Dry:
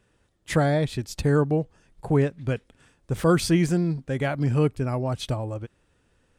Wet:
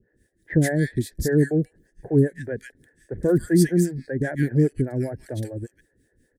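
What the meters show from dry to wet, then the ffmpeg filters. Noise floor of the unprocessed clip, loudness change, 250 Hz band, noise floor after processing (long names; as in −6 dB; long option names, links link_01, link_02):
−67 dBFS, +1.5 dB, +3.0 dB, −69 dBFS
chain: -filter_complex "[0:a]firequalizer=gain_entry='entry(130,0);entry(350,6);entry(1200,-26);entry(1700,9);entry(2600,-16);entry(3800,-6);entry(5500,-3);entry(8200,2);entry(12000,8)':delay=0.05:min_phase=1,acrossover=split=430[link_01][link_02];[link_01]aeval=exprs='val(0)*(1-1/2+1/2*cos(2*PI*5*n/s))':channel_layout=same[link_03];[link_02]aeval=exprs='val(0)*(1-1/2-1/2*cos(2*PI*5*n/s))':channel_layout=same[link_04];[link_03][link_04]amix=inputs=2:normalize=0,acrossover=split=1800[link_05][link_06];[link_06]adelay=140[link_07];[link_05][link_07]amix=inputs=2:normalize=0,volume=4.5dB"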